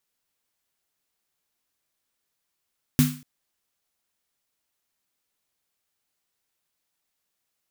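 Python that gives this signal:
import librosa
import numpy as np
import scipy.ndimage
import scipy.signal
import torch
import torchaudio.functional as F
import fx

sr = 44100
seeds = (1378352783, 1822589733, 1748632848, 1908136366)

y = fx.drum_snare(sr, seeds[0], length_s=0.24, hz=150.0, second_hz=250.0, noise_db=-9.0, noise_from_hz=1100.0, decay_s=0.37, noise_decay_s=0.4)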